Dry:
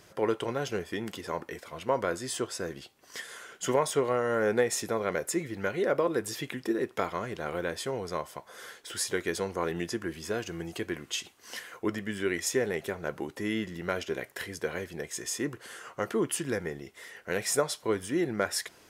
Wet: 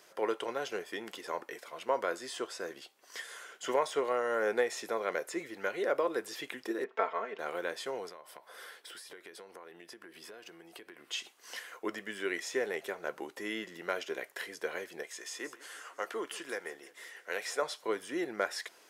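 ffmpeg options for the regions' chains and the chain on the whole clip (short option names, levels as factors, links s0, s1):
-filter_complex "[0:a]asettb=1/sr,asplit=3[s0][s1][s2];[s0]atrim=end=6.844[s3];[s1]atrim=start=6.84:end=7.39,asetpts=PTS-STARTPTS,afade=t=in:d=0.004:c=qsin,afade=t=out:st=0.546:d=0.004:c=qsin,highpass=280,lowpass=2300,aecho=1:1:4.5:0.76,atrim=end_sample=24255[s4];[s2]atrim=start=7.386[s5];[s3][s4]acrossfade=d=0.004:c1=hsin:c2=qsin[s6];[s6][s5]acrossfade=d=0.004:c1=qsin:c2=hsin,asettb=1/sr,asplit=3[s7][s8][s9];[s7]atrim=end=8.094[s10];[s8]atrim=start=8.09:end=11.11,asetpts=PTS-STARTPTS,afade=t=in:d=0.004:c=qsin,afade=t=out:st=3.016:d=0.004:c=qsin,equalizer=f=6700:w=3.8:g=-9.5,acompressor=threshold=0.00891:ratio=12:attack=3.2:release=140:knee=1:detection=peak[s11];[s9]atrim=start=11.106[s12];[s10][s11]acrossfade=d=0.004:c1=hsin:c2=qsin[s13];[s13][s12]acrossfade=d=0.004:c1=qsin:c2=hsin,asettb=1/sr,asplit=3[s14][s15][s16];[s14]atrim=end=15.034[s17];[s15]atrim=start=15.03:end=17.62,asetpts=PTS-STARTPTS,afade=t=in:d=0.004:c=qsin,afade=t=out:st=2.586:d=0.004:c=qsin,highpass=f=520:p=1,aecho=1:1:169|338|507|676|845:0.1|0.057|0.0325|0.0185|0.0106,atrim=end_sample=114219[s18];[s16]atrim=start=17.616[s19];[s17][s18]acrossfade=d=0.004:c1=hsin:c2=qsin[s20];[s20][s19]acrossfade=d=0.004:c1=qsin:c2=hsin,highpass=410,acrossover=split=5000[s21][s22];[s22]acompressor=threshold=0.00562:ratio=4:attack=1:release=60[s23];[s21][s23]amix=inputs=2:normalize=0,volume=0.794"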